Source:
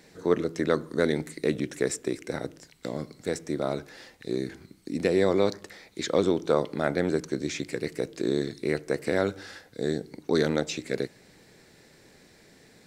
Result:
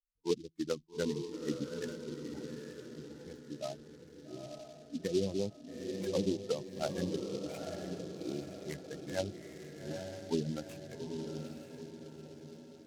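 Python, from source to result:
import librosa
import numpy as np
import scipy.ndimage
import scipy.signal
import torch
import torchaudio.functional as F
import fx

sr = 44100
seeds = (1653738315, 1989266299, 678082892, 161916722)

y = fx.bin_expand(x, sr, power=3.0)
y = fx.env_lowpass_down(y, sr, base_hz=390.0, full_db=-26.0)
y = scipy.signal.sosfilt(scipy.signal.butter(2, 1600.0, 'lowpass', fs=sr, output='sos'), y)
y = fx.echo_diffused(y, sr, ms=852, feedback_pct=48, wet_db=-4.5)
y = fx.noise_mod_delay(y, sr, seeds[0], noise_hz=4200.0, depth_ms=0.063)
y = F.gain(torch.from_numpy(y), -1.5).numpy()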